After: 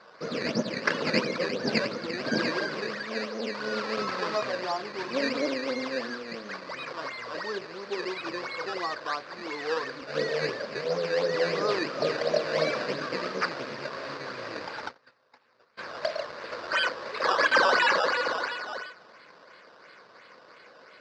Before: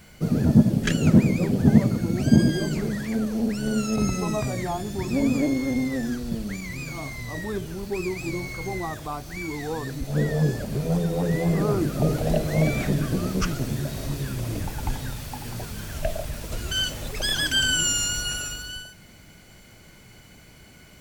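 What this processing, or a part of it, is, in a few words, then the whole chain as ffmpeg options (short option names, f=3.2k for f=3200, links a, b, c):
circuit-bent sampling toy: -filter_complex "[0:a]acrusher=samples=14:mix=1:aa=0.000001:lfo=1:lforange=14:lforate=2.9,highpass=500,equalizer=f=510:t=q:w=4:g=8,equalizer=f=780:t=q:w=4:g=-5,equalizer=f=1.1k:t=q:w=4:g=6,equalizer=f=1.6k:t=q:w=4:g=5,equalizer=f=3.2k:t=q:w=4:g=-6,equalizer=f=4.7k:t=q:w=4:g=9,lowpass=f=4.9k:w=0.5412,lowpass=f=4.9k:w=1.3066,asplit=3[a][b][c];[a]afade=t=out:st=14.87:d=0.02[d];[b]agate=range=-28dB:threshold=-32dB:ratio=16:detection=peak,afade=t=in:st=14.87:d=0.02,afade=t=out:st=15.77:d=0.02[e];[c]afade=t=in:st=15.77:d=0.02[f];[d][e][f]amix=inputs=3:normalize=0"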